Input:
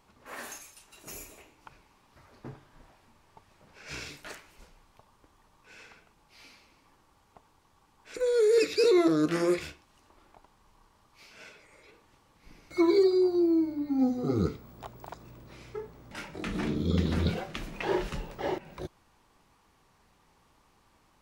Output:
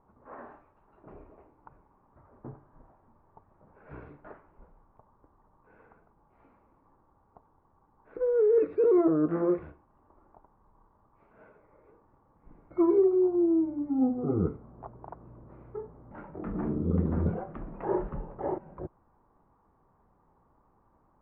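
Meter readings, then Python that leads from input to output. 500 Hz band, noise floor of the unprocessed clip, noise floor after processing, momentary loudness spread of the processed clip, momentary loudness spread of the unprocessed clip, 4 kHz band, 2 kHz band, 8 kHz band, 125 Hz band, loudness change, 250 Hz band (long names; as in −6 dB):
0.0 dB, −66 dBFS, −67 dBFS, 21 LU, 22 LU, below −35 dB, below −10 dB, below −30 dB, 0.0 dB, 0.0 dB, 0.0 dB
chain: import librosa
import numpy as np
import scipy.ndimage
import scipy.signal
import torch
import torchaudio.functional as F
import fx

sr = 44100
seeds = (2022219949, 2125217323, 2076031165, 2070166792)

y = scipy.signal.sosfilt(scipy.signal.butter(4, 1200.0, 'lowpass', fs=sr, output='sos'), x)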